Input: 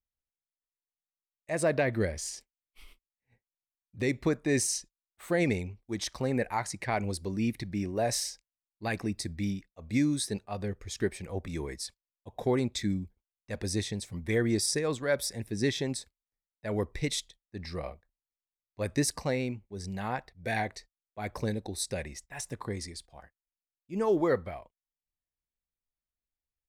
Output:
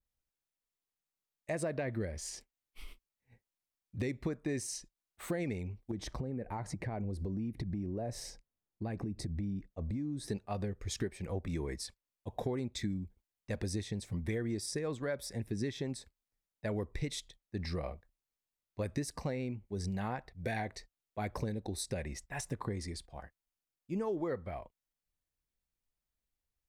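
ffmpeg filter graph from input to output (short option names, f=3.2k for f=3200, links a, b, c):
-filter_complex "[0:a]asettb=1/sr,asplit=3[a][b][c];[a]atrim=end=5.914[d];[b]atrim=start=5.91:end=10.28,asetpts=PTS-STARTPTS,afade=t=in:d=0.004:c=qsin,afade=t=out:st=4.366:d=0.004:c=qsin,tiltshelf=f=1.1k:g=8,acompressor=threshold=-39dB:ratio=4:attack=3.2:release=140:knee=1:detection=peak[e];[c]atrim=start=10.276[f];[d][e]acrossfade=d=0.004:c1=hsin:c2=qsin[g];[g][f]acrossfade=d=0.004:c1=qsin:c2=hsin,lowshelf=f=450:g=4.5,acompressor=threshold=-35dB:ratio=6,adynamicequalizer=threshold=0.00141:dfrequency=2900:dqfactor=0.7:tfrequency=2900:tqfactor=0.7:attack=5:release=100:ratio=0.375:range=2.5:mode=cutabove:tftype=highshelf,volume=1.5dB"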